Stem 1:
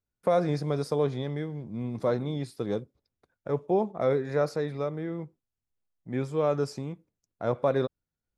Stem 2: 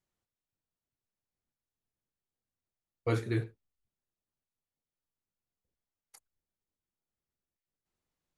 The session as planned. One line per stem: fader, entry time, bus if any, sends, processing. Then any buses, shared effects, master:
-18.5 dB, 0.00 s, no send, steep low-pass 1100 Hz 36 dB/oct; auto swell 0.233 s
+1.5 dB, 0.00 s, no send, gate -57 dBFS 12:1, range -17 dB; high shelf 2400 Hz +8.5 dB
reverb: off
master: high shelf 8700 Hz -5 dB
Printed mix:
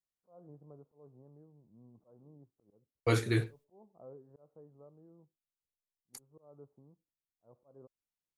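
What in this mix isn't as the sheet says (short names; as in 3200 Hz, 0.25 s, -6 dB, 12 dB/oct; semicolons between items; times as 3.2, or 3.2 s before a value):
stem 1 -18.5 dB -> -25.5 dB; master: missing high shelf 8700 Hz -5 dB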